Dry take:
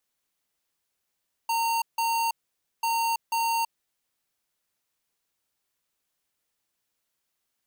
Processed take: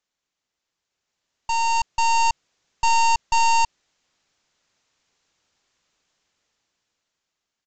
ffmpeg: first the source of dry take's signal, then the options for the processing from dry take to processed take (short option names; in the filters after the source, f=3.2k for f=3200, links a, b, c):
-f lavfi -i "aevalsrc='0.0531*(2*lt(mod(918*t,1),0.5)-1)*clip(min(mod(mod(t,1.34),0.49),0.33-mod(mod(t,1.34),0.49))/0.005,0,1)*lt(mod(t,1.34),0.98)':d=2.68:s=44100"
-af "dynaudnorm=f=360:g=9:m=12dB,aresample=16000,aeval=exprs='clip(val(0),-1,0.0398)':c=same,aresample=44100"